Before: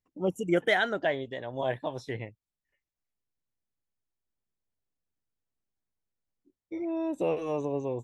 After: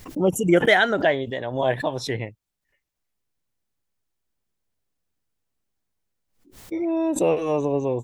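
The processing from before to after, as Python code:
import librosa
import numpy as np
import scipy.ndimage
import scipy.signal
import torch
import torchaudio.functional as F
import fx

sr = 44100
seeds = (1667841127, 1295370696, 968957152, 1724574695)

y = fx.pre_swell(x, sr, db_per_s=120.0)
y = F.gain(torch.from_numpy(y), 8.0).numpy()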